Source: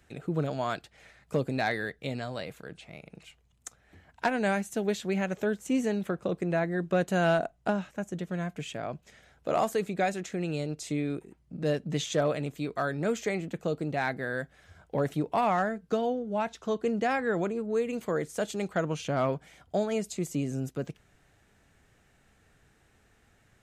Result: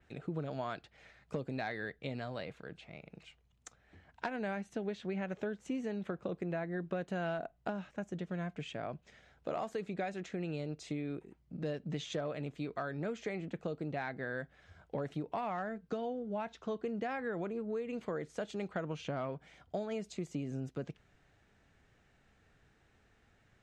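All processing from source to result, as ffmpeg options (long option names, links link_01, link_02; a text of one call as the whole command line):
ffmpeg -i in.wav -filter_complex "[0:a]asettb=1/sr,asplit=3[link_01][link_02][link_03];[link_01]atrim=end=4.364[link_04];[link_02]atrim=start=4.36:end=5.29,asetpts=PTS-STARTPTS,afade=type=in:duration=0.004:curve=qsin,afade=type=out:start_time=0.926:duration=0.004:curve=qsin,highshelf=frequency=4600:gain=-5,bandreject=frequency=7200:width=19[link_05];[link_03]atrim=start=5.286[link_06];[link_04][link_05]acrossfade=duration=0.004:curve1=hsin:curve2=qsin[link_07];[link_07][link_06]acrossfade=duration=0.004:curve1=qsin:curve2=hsin,acompressor=threshold=-30dB:ratio=6,lowpass=5500,adynamicequalizer=threshold=0.00158:dfrequency=4100:dqfactor=0.7:tfrequency=4100:tqfactor=0.7:attack=5:release=100:ratio=0.375:range=2.5:mode=cutabove:tftype=highshelf,volume=-4dB" out.wav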